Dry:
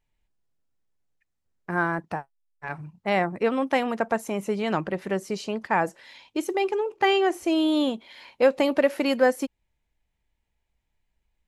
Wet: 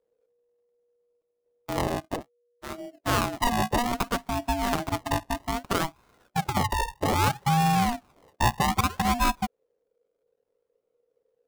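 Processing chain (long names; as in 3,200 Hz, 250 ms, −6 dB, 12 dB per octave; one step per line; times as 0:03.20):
adaptive Wiener filter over 25 samples
0:06.45–0:07.15: high shelf with overshoot 1,500 Hz +9 dB, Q 1.5
brickwall limiter −15.5 dBFS, peak gain reduction 11.5 dB
sample-and-hold swept by an LFO 33×, swing 100% 0.62 Hz
ring modulation 480 Hz
level +3.5 dB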